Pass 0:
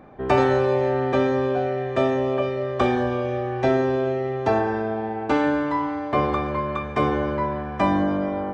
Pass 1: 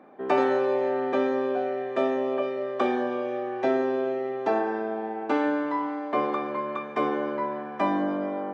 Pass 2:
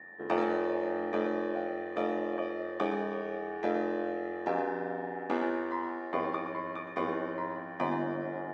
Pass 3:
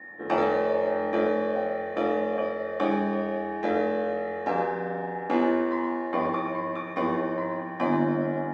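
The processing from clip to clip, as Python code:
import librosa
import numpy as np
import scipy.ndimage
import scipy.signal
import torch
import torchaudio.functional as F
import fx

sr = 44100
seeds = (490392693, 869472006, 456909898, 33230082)

y1 = scipy.signal.sosfilt(scipy.signal.butter(4, 220.0, 'highpass', fs=sr, output='sos'), x)
y1 = fx.high_shelf(y1, sr, hz=4700.0, db=-8.5)
y1 = F.gain(torch.from_numpy(y1), -3.5).numpy()
y2 = y1 + 10.0 ** (-40.0 / 20.0) * np.sin(2.0 * np.pi * 1800.0 * np.arange(len(y1)) / sr)
y2 = y2 * np.sin(2.0 * np.pi * 44.0 * np.arange(len(y2)) / sr)
y2 = y2 + 10.0 ** (-9.5 / 20.0) * np.pad(y2, (int(118 * sr / 1000.0), 0))[:len(y2)]
y2 = F.gain(torch.from_numpy(y2), -4.0).numpy()
y3 = fx.room_shoebox(y2, sr, seeds[0], volume_m3=520.0, walls='furnished', distance_m=2.2)
y3 = F.gain(torch.from_numpy(y3), 2.5).numpy()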